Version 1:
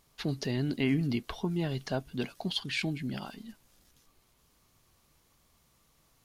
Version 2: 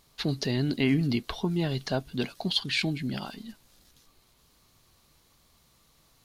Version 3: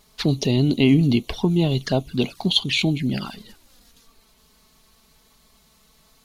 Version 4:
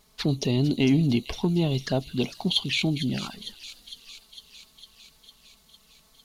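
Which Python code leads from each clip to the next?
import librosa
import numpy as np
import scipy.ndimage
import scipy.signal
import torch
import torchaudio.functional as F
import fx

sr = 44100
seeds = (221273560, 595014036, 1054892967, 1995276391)

y1 = fx.peak_eq(x, sr, hz=4100.0, db=5.5, octaves=0.47)
y1 = y1 * 10.0 ** (3.5 / 20.0)
y2 = fx.env_flanger(y1, sr, rest_ms=4.9, full_db=-27.0)
y2 = y2 * 10.0 ** (9.0 / 20.0)
y3 = fx.echo_wet_highpass(y2, sr, ms=454, feedback_pct=69, hz=5000.0, wet_db=-5.0)
y3 = 10.0 ** (-6.5 / 20.0) * np.tanh(y3 / 10.0 ** (-6.5 / 20.0))
y3 = y3 * 10.0 ** (-4.0 / 20.0)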